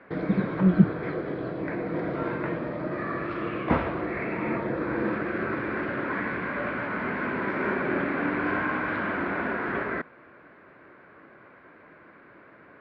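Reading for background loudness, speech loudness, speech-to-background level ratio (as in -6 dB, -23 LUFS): -29.5 LUFS, -24.5 LUFS, 5.0 dB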